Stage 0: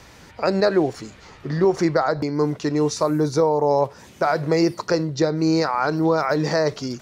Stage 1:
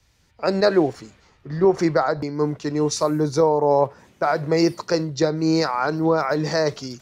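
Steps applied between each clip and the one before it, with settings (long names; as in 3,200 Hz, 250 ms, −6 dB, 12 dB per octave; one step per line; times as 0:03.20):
multiband upward and downward expander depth 70%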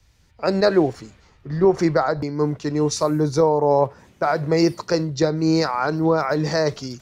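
low-shelf EQ 110 Hz +7.5 dB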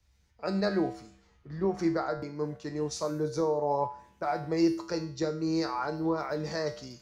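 tuned comb filter 66 Hz, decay 0.49 s, harmonics odd, mix 80%
level −1.5 dB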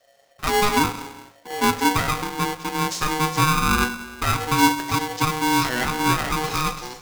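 reverb whose tail is shaped and stops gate 490 ms falling, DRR 11.5 dB
ring modulator with a square carrier 620 Hz
level +8.5 dB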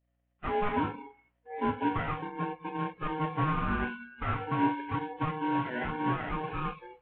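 variable-slope delta modulation 16 kbit/s
mains hum 60 Hz, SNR 23 dB
noise reduction from a noise print of the clip's start 22 dB
level −7.5 dB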